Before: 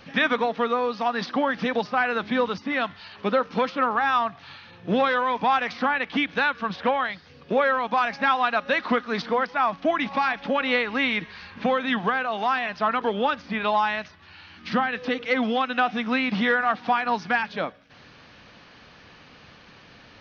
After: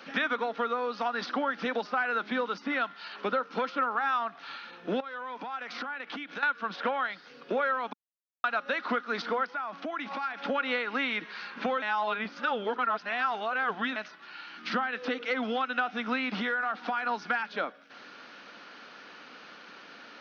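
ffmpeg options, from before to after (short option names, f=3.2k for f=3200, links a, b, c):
-filter_complex "[0:a]asettb=1/sr,asplit=3[a][b][c];[a]atrim=end=5.004[d];[b]atrim=start=5:end=6.43,asetpts=PTS-STARTPTS,afade=t=in:d=0.004:c=qsin,afade=t=out:st=1.426:d=0.004:c=qsin,acompressor=threshold=-34dB:ratio=20:attack=3.2:release=140:knee=1:detection=peak[e];[c]atrim=start=6.426[f];[d][e]acrossfade=d=0.004:c1=hsin:c2=qsin[g];[g][f]acrossfade=d=0.004:c1=qsin:c2=hsin,asettb=1/sr,asplit=3[h][i][j];[h]atrim=end=9.494[k];[i]atrim=start=9.49:end=10.4,asetpts=PTS-STARTPTS,afade=t=in:d=0.004:c=qsin,afade=t=out:st=0.906:d=0.004:c=qsin,acompressor=threshold=-32dB:ratio=6:attack=3.2:release=140:knee=1:detection=peak[l];[j]atrim=start=10.396[m];[k][l]acrossfade=d=0.004:c1=hsin:c2=qsin[n];[n][m]acrossfade=d=0.004:c1=qsin:c2=hsin,asettb=1/sr,asplit=3[o][p][q];[o]atrim=end=16.394[r];[p]atrim=start=16.39:end=17.09,asetpts=PTS-STARTPTS,afade=t=in:d=0.004:c=qsin,afade=t=out:st=0.696:d=0.004:c=qsin,acompressor=threshold=-22dB:ratio=6:attack=3.2:release=140:knee=1:detection=peak[s];[q]atrim=start=17.086[t];[r][s]acrossfade=d=0.004:c1=hsin:c2=qsin[u];[u][t]acrossfade=d=0.004:c1=qsin:c2=hsin,asplit=5[v][w][x][y][z];[v]atrim=end=7.93,asetpts=PTS-STARTPTS,afade=t=out:st=7.926:d=0.004:c=hsin[aa];[w]atrim=start=7.93:end=8.44,asetpts=PTS-STARTPTS,volume=0[ab];[x]atrim=start=8.44:end=11.822,asetpts=PTS-STARTPTS,afade=t=in:d=0.004:c=hsin[ac];[y]atrim=start=11.818:end=13.962,asetpts=PTS-STARTPTS,areverse[ad];[z]atrim=start=13.958[ae];[aa][ab][ac]concat=n=3:v=0:a=1[af];[af][ad]acrossfade=d=0.004:c1=hsin:c2=hsin[ag];[ag][ae]acrossfade=d=0.004:c1=hsin:c2=hsin,highpass=f=230:w=0.5412,highpass=f=230:w=1.3066,equalizer=f=1.4k:t=o:w=0.2:g=10.5,acompressor=threshold=-30dB:ratio=2.5"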